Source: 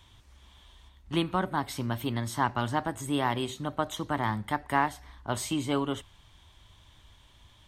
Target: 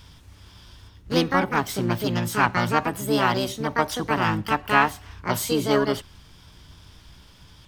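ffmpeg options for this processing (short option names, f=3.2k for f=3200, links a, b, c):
-filter_complex "[0:a]aeval=exprs='val(0)+0.000891*(sin(2*PI*60*n/s)+sin(2*PI*2*60*n/s)/2+sin(2*PI*3*60*n/s)/3+sin(2*PI*4*60*n/s)/4+sin(2*PI*5*60*n/s)/5)':c=same,asplit=2[a][b];[b]asetrate=66075,aresample=44100,atempo=0.66742,volume=-1dB[c];[a][c]amix=inputs=2:normalize=0,volume=4.5dB"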